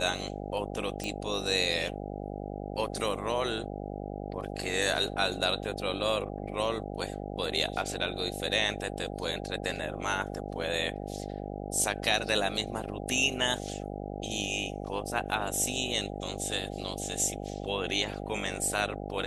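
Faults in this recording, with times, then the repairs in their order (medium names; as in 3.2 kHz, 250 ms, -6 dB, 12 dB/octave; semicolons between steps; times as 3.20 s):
buzz 50 Hz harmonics 16 -38 dBFS
1.04 s: pop -20 dBFS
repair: de-click; de-hum 50 Hz, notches 16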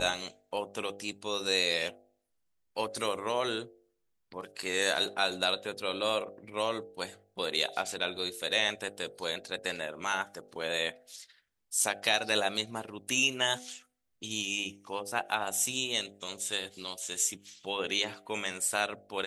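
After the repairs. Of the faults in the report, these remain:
nothing left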